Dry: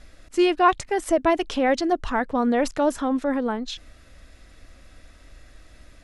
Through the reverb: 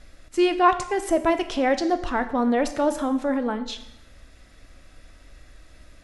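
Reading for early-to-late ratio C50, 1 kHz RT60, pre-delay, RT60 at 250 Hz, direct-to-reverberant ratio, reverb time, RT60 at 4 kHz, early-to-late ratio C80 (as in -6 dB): 12.5 dB, 0.85 s, 5 ms, 0.75 s, 9.0 dB, 0.80 s, 0.80 s, 14.5 dB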